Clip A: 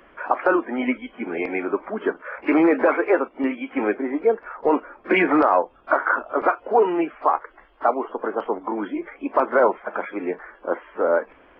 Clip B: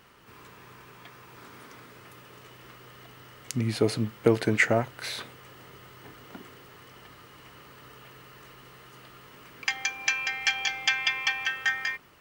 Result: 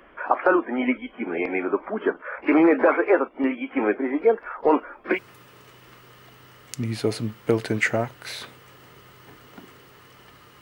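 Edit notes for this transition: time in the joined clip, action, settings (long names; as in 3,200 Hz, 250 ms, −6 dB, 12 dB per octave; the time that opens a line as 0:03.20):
clip A
0:04.02–0:05.19: high-shelf EQ 2,900 Hz +8 dB
0:05.14: continue with clip B from 0:01.91, crossfade 0.10 s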